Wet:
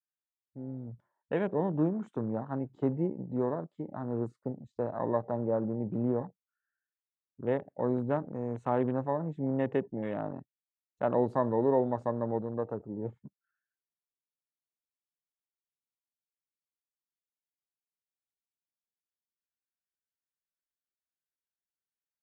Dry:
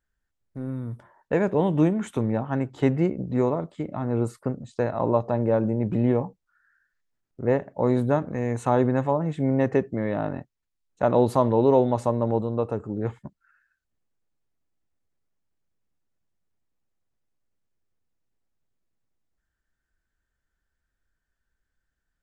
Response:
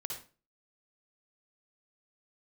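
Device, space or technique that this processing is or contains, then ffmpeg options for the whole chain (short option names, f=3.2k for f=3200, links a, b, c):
over-cleaned archive recording: -af "highpass=120,lowpass=6.8k,afwtdn=0.0178,volume=-7.5dB"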